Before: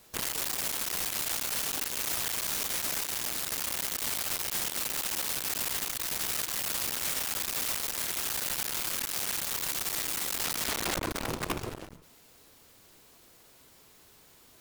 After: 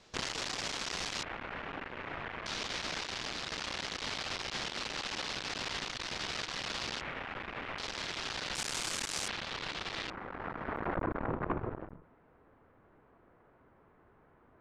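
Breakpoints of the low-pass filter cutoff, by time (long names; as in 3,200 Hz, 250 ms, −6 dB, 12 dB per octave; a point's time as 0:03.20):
low-pass filter 24 dB per octave
5,900 Hz
from 0:01.23 2,200 Hz
from 0:02.46 5,000 Hz
from 0:07.01 2,400 Hz
from 0:07.78 4,900 Hz
from 0:08.55 8,100 Hz
from 0:09.28 4,100 Hz
from 0:10.10 1,600 Hz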